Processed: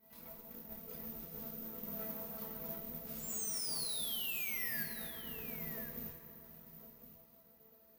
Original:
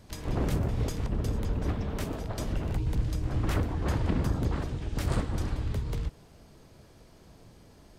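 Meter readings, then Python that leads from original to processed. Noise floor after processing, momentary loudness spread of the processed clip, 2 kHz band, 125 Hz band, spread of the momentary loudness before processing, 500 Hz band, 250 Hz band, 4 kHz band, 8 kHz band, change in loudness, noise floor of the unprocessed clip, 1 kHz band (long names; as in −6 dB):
−64 dBFS, 18 LU, −3.0 dB, −26.5 dB, 6 LU, −14.0 dB, −16.5 dB, +1.0 dB, +4.0 dB, −8.0 dB, −55 dBFS, −16.0 dB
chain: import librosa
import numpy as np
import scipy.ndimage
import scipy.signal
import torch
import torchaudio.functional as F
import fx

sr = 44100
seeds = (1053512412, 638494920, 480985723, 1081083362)

y = fx.lower_of_two(x, sr, delay_ms=4.5)
y = scipy.signal.sosfilt(scipy.signal.butter(2, 89.0, 'highpass', fs=sr, output='sos'), y)
y = fx.high_shelf(y, sr, hz=3300.0, db=-10.5)
y = fx.hum_notches(y, sr, base_hz=50, count=4)
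y = fx.over_compress(y, sr, threshold_db=-37.0, ratio=-0.5)
y = fx.resonator_bank(y, sr, root=52, chord='sus4', decay_s=0.25)
y = fx.chorus_voices(y, sr, voices=4, hz=0.64, base_ms=28, depth_ms=2.6, mix_pct=50)
y = fx.spec_paint(y, sr, seeds[0], shape='fall', start_s=3.06, length_s=1.78, low_hz=1600.0, high_hz=9000.0, level_db=-47.0)
y = fx.mod_noise(y, sr, seeds[1], snr_db=11)
y = y + 10.0 ** (-12.5 / 20.0) * np.pad(y, (int(1058 * sr / 1000.0), 0))[:len(y)]
y = fx.rev_fdn(y, sr, rt60_s=3.1, lf_ratio=1.0, hf_ratio=0.55, size_ms=15.0, drr_db=4.0)
y = (np.kron(scipy.signal.resample_poly(y, 1, 3), np.eye(3)[0]) * 3)[:len(y)]
y = F.gain(torch.from_numpy(y), 2.0).numpy()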